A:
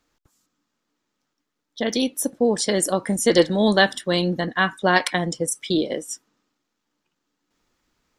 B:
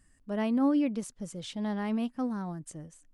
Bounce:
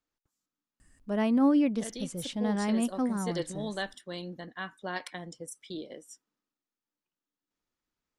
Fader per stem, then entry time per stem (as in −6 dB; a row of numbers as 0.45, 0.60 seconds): −18.0, +2.5 decibels; 0.00, 0.80 seconds